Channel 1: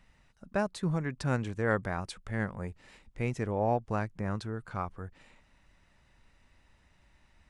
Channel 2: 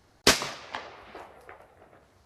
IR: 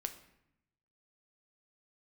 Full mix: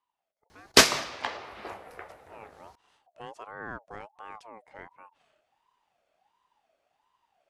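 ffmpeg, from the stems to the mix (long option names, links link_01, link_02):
-filter_complex "[0:a]aeval=exprs='val(0)*sin(2*PI*810*n/s+810*0.25/1.4*sin(2*PI*1.4*n/s))':channel_layout=same,volume=-8dB,afade=type=in:start_time=2.16:duration=0.61:silence=0.251189[link_01];[1:a]adelay=500,volume=0dB,asplit=2[link_02][link_03];[link_03]volume=-3.5dB[link_04];[2:a]atrim=start_sample=2205[link_05];[link_04][link_05]afir=irnorm=-1:irlink=0[link_06];[link_01][link_02][link_06]amix=inputs=3:normalize=0,lowshelf=frequency=190:gain=-5"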